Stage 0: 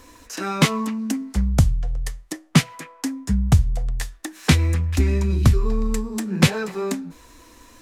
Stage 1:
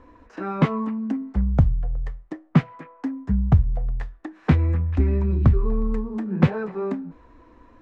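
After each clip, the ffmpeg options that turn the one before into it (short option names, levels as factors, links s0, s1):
-af "lowpass=1300,volume=0.891"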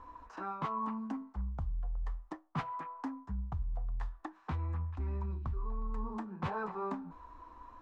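-af "equalizer=f=125:t=o:w=1:g=-8,equalizer=f=250:t=o:w=1:g=-6,equalizer=f=500:t=o:w=1:g=-8,equalizer=f=1000:t=o:w=1:g=11,equalizer=f=2000:t=o:w=1:g=-7,areverse,acompressor=threshold=0.0316:ratio=12,areverse,volume=0.708"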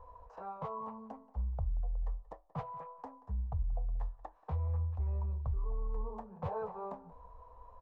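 -filter_complex "[0:a]firequalizer=gain_entry='entry(100,0);entry(320,-23);entry(460,5);entry(1400,-15)':delay=0.05:min_phase=1,asplit=2[s0][s1];[s1]adelay=180.8,volume=0.1,highshelf=f=4000:g=-4.07[s2];[s0][s2]amix=inputs=2:normalize=0,volume=1.26"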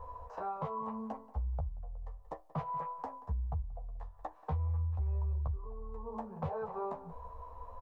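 -filter_complex "[0:a]acompressor=threshold=0.00891:ratio=6,asplit=2[s0][s1];[s1]adelay=13,volume=0.531[s2];[s0][s2]amix=inputs=2:normalize=0,volume=2"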